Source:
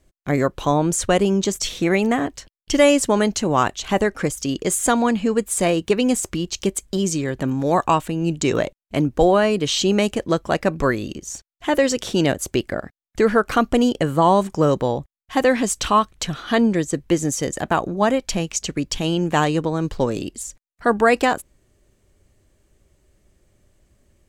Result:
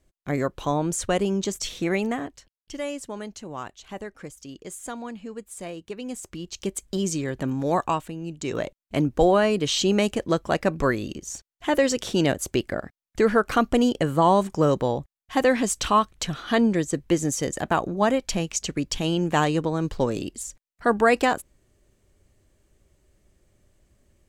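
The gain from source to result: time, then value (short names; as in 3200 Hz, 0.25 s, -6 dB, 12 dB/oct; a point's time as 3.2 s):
2 s -6 dB
2.72 s -17 dB
5.94 s -17 dB
6.9 s -4.5 dB
7.74 s -4.5 dB
8.32 s -13 dB
8.8 s -3 dB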